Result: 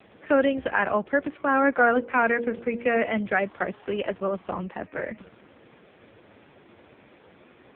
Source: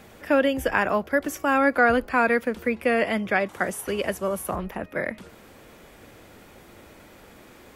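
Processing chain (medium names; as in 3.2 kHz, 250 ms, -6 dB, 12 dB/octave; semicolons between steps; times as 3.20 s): 1.89–3.28 s: de-hum 47.35 Hz, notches 11; AMR-NB 5.15 kbps 8 kHz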